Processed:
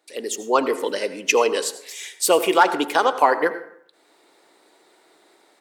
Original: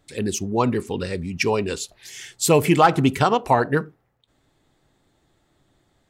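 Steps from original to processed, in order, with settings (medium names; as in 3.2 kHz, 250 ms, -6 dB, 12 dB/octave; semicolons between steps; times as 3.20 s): high-pass 310 Hz 24 dB/octave; level rider gain up to 12.5 dB; plate-style reverb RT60 0.69 s, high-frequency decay 0.55×, pre-delay 75 ms, DRR 12.5 dB; speed mistake 44.1 kHz file played as 48 kHz; trim -1.5 dB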